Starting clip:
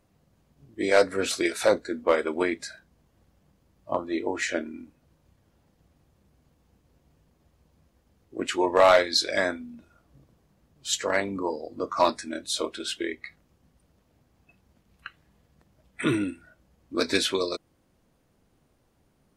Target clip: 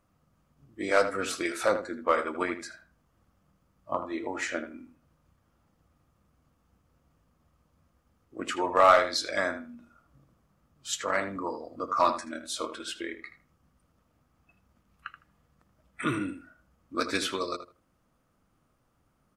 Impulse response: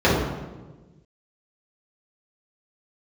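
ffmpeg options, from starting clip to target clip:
-filter_complex "[0:a]equalizer=frequency=400:width_type=o:width=0.33:gain=-5,equalizer=frequency=1250:width_type=o:width=0.33:gain=11,equalizer=frequency=4000:width_type=o:width=0.33:gain=-4,asplit=2[link_01][link_02];[link_02]adelay=79,lowpass=frequency=2500:poles=1,volume=-9.5dB,asplit=2[link_03][link_04];[link_04]adelay=79,lowpass=frequency=2500:poles=1,volume=0.2,asplit=2[link_05][link_06];[link_06]adelay=79,lowpass=frequency=2500:poles=1,volume=0.2[link_07];[link_01][link_03][link_05][link_07]amix=inputs=4:normalize=0,volume=-4.5dB"

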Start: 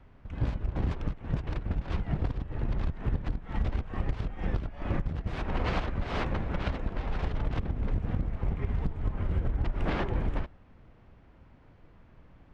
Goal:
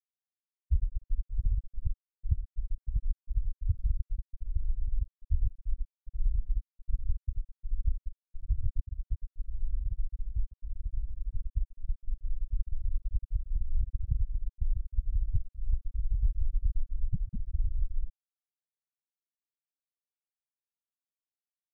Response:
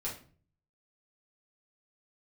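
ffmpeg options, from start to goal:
-af "asetrate=25442,aresample=44100,afftfilt=real='re*gte(hypot(re,im),0.316)':imag='im*gte(hypot(re,im),0.316)':win_size=1024:overlap=0.75,volume=2.5dB"

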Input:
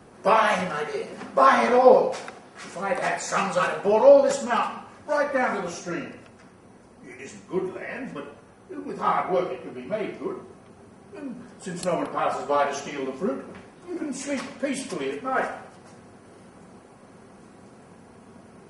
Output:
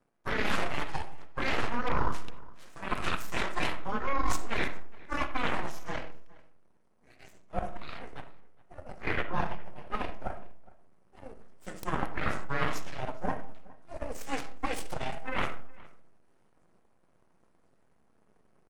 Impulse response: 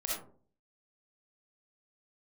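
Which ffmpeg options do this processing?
-filter_complex "[0:a]afreqshift=-14,aeval=exprs='0.794*(cos(1*acos(clip(val(0)/0.794,-1,1)))-cos(1*PI/2))+0.251*(cos(3*acos(clip(val(0)/0.794,-1,1)))-cos(3*PI/2))+0.316*(cos(6*acos(clip(val(0)/0.794,-1,1)))-cos(6*PI/2))':channel_layout=same,aeval=exprs='max(val(0),0)':channel_layout=same,areverse,acompressor=threshold=-26dB:ratio=12,areverse,asplit=2[link_01][link_02];[link_02]adelay=414,volume=-22dB,highshelf=frequency=4000:gain=-9.32[link_03];[link_01][link_03]amix=inputs=2:normalize=0,asplit=2[link_04][link_05];[1:a]atrim=start_sample=2205,lowpass=2800[link_06];[link_05][link_06]afir=irnorm=-1:irlink=0,volume=-12.5dB[link_07];[link_04][link_07]amix=inputs=2:normalize=0"

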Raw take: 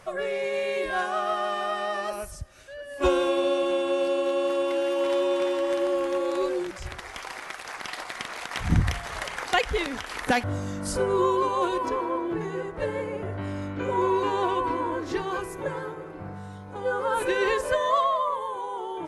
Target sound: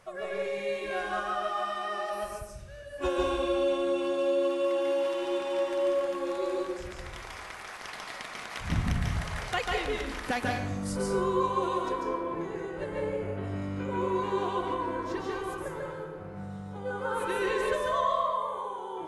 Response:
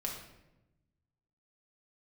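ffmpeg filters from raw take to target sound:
-filter_complex "[0:a]asplit=2[link_01][link_02];[1:a]atrim=start_sample=2205,adelay=143[link_03];[link_02][link_03]afir=irnorm=-1:irlink=0,volume=-0.5dB[link_04];[link_01][link_04]amix=inputs=2:normalize=0,volume=-8dB"

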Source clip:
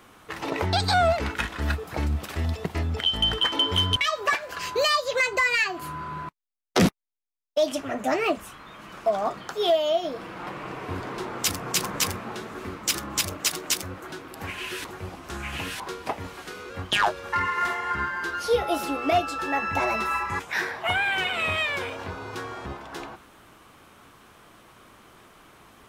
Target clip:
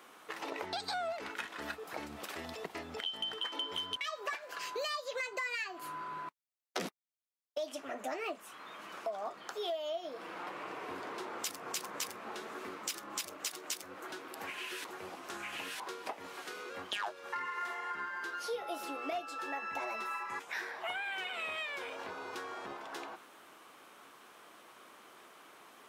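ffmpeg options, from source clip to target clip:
ffmpeg -i in.wav -af "highpass=340,acompressor=threshold=-37dB:ratio=2.5,volume=-3.5dB" out.wav

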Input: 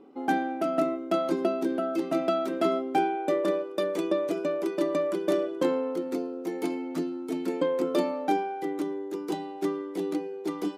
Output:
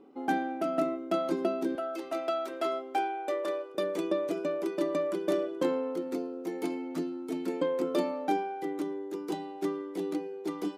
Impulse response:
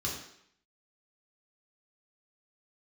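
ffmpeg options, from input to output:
-filter_complex "[0:a]asettb=1/sr,asplit=3[link_01][link_02][link_03];[link_01]atrim=end=1.754[link_04];[link_02]atrim=start=1.75:end=3.75,asetpts=PTS-STARTPTS,afade=type=in:duration=0.004:curve=qsin,afade=type=out:start_time=1.996:duration=0.004:curve=qsin,highpass=500[link_05];[link_03]atrim=start=3.746[link_06];[link_04][link_05]acrossfade=duration=0.004:curve1=hsin:curve2=qsin[link_07];[link_07][link_06]acrossfade=duration=0.004:curve1=qsin:curve2=hsin,volume=-3dB"

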